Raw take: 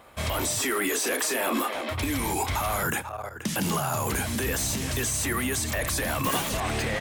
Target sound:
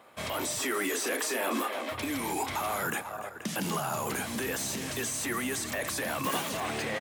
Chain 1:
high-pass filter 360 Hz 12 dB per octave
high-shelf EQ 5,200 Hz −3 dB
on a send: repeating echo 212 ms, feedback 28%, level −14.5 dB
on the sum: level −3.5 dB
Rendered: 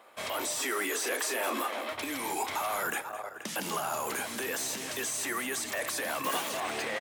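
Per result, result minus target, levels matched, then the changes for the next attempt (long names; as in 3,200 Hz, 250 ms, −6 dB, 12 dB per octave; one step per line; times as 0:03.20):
125 Hz band −10.5 dB; echo 79 ms early
change: high-pass filter 170 Hz 12 dB per octave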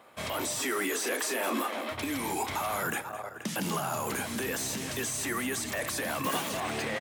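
echo 79 ms early
change: repeating echo 291 ms, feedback 28%, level −14.5 dB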